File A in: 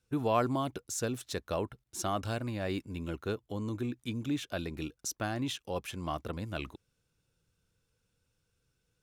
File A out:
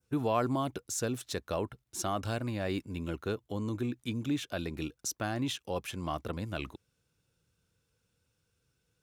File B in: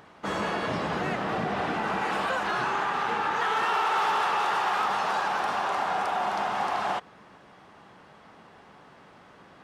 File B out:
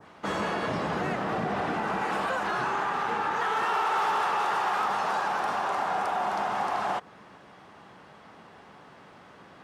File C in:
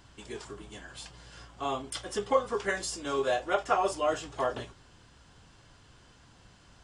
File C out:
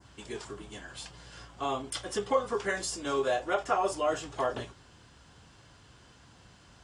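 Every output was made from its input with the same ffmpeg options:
-filter_complex "[0:a]highpass=49,adynamicequalizer=threshold=0.00794:dfrequency=3300:dqfactor=0.84:tfrequency=3300:tqfactor=0.84:attack=5:release=100:ratio=0.375:range=2:mode=cutabove:tftype=bell,asplit=2[s0][s1];[s1]alimiter=limit=0.0631:level=0:latency=1:release=73,volume=0.75[s2];[s0][s2]amix=inputs=2:normalize=0,volume=0.668"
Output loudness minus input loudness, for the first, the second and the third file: +0.5 LU, -1.0 LU, -1.0 LU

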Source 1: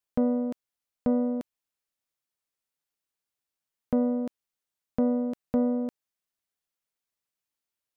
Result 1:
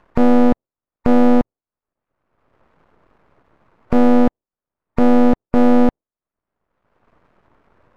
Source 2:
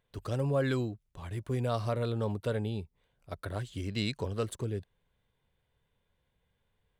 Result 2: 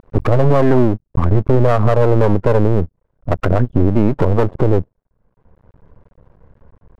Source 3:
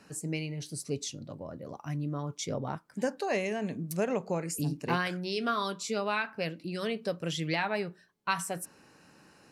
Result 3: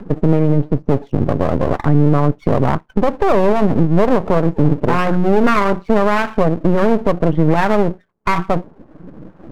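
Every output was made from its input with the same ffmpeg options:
-af "afftdn=nr=24:nf=-46,lowpass=f=1200:w=0.5412,lowpass=f=1200:w=1.3066,acompressor=threshold=0.00562:ratio=2.5,lowshelf=f=79:g=5,acompressor=mode=upward:threshold=0.00112:ratio=2.5,equalizer=f=800:t=o:w=0.22:g=-4.5,aeval=exprs='max(val(0),0)':c=same,alimiter=level_in=56.2:limit=0.891:release=50:level=0:latency=1,volume=0.891"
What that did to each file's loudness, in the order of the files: +13.0 LU, +18.5 LU, +17.5 LU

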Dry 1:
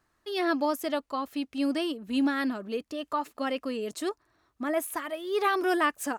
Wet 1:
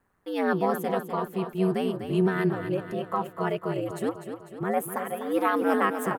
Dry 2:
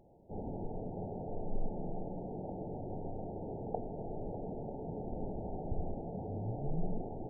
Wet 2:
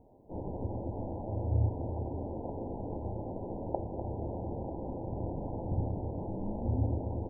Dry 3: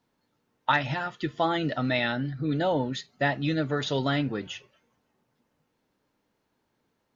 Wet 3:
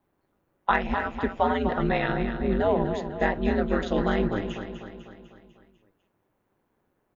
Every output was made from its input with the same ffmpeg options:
-filter_complex "[0:a]equalizer=f=4800:t=o:w=1.6:g=-14.5,aeval=exprs='val(0)*sin(2*PI*94*n/s)':c=same,asplit=2[s0][s1];[s1]aecho=0:1:249|498|747|996|1245|1494:0.355|0.192|0.103|0.0559|0.0302|0.0163[s2];[s0][s2]amix=inputs=2:normalize=0,volume=1.88"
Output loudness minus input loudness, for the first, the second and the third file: +2.0 LU, +5.5 LU, +1.5 LU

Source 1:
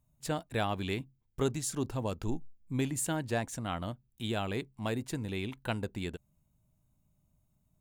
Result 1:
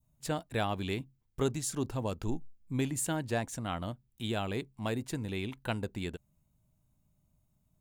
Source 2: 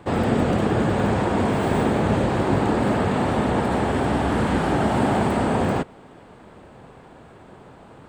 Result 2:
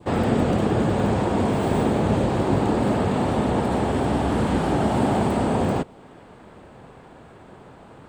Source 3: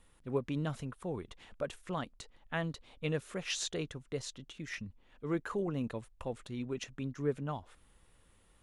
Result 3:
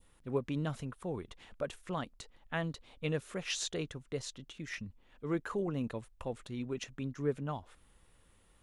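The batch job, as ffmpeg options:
-af "adynamicequalizer=threshold=0.00708:dfrequency=1700:dqfactor=1.1:tfrequency=1700:tqfactor=1.1:attack=5:release=100:ratio=0.375:range=2.5:mode=cutabove:tftype=bell"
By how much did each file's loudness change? 0.0 LU, -0.5 LU, 0.0 LU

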